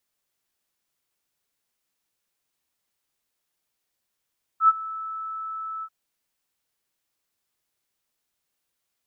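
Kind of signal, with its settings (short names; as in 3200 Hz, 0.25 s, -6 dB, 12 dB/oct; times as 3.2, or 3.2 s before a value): ADSR sine 1310 Hz, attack 85 ms, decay 33 ms, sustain -19.5 dB, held 1.23 s, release 58 ms -10.5 dBFS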